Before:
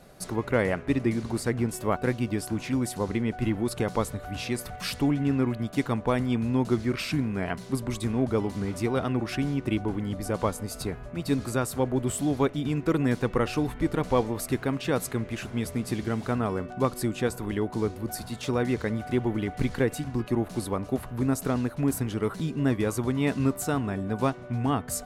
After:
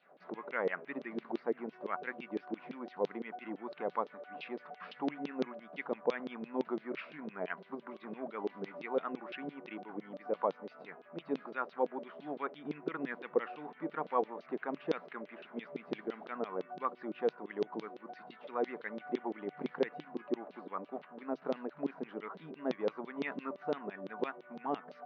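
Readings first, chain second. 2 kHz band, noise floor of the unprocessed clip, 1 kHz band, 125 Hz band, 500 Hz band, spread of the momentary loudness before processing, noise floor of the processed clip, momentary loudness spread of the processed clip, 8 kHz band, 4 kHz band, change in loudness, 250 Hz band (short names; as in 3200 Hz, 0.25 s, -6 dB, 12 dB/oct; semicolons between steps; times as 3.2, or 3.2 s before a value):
-8.5 dB, -42 dBFS, -6.5 dB, -28.0 dB, -8.0 dB, 6 LU, -60 dBFS, 10 LU, under -35 dB, -15.5 dB, -11.5 dB, -14.5 dB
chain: air absorption 460 m; LFO band-pass saw down 5.9 Hz 400–3700 Hz; FFT band-pass 140–6400 Hz; gain +1.5 dB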